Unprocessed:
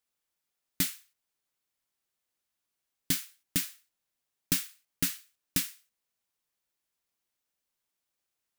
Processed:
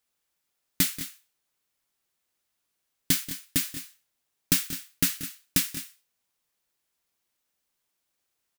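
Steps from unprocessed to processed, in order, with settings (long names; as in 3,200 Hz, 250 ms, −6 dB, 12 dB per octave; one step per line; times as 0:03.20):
0:03.24–0:03.65: notch comb filter 190 Hz
on a send: multi-tap delay 183/208 ms −15.5/−13.5 dB
on the sum: level +5 dB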